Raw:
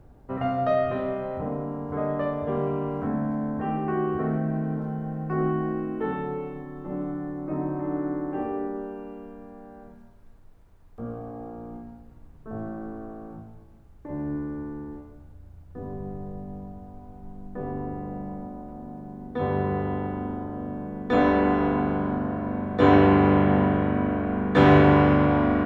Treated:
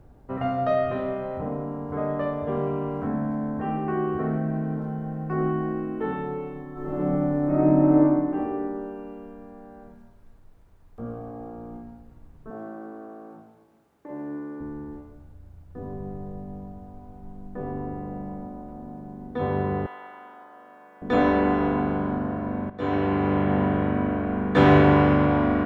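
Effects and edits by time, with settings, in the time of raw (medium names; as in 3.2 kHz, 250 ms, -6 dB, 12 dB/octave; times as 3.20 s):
6.72–7.98 s: reverb throw, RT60 1.5 s, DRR -7 dB
12.50–14.61 s: high-pass 290 Hz
19.86–21.02 s: high-pass 1.1 kHz
22.70–23.85 s: fade in, from -13.5 dB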